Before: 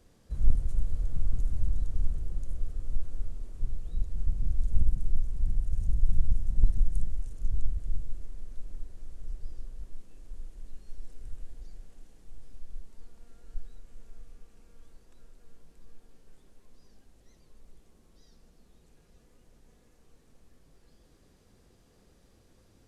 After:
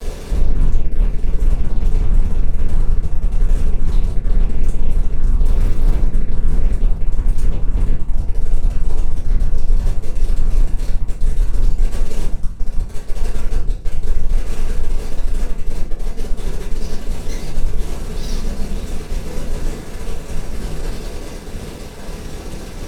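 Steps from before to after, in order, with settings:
0:07.18–0:08.01: dynamic equaliser 100 Hz, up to +6 dB, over −48 dBFS, Q 1.7
downward compressor 2 to 1, threshold −35 dBFS, peak gain reduction 12.5 dB
0:05.45–0:05.95: leveller curve on the samples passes 5
fuzz pedal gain 58 dB, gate −59 dBFS
feedback echo with a high-pass in the loop 1,081 ms, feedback 48%, level −14 dB
rectangular room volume 44 cubic metres, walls mixed, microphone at 1.9 metres
highs frequency-modulated by the lows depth 0.23 ms
level −16 dB

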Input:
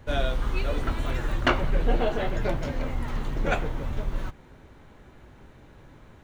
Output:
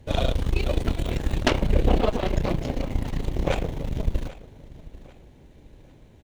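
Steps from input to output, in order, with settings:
parametric band 1,300 Hz −14 dB 1.1 octaves
harmonic generator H 6 −8 dB, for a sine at −7.5 dBFS
repeating echo 791 ms, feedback 34%, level −18.5 dB

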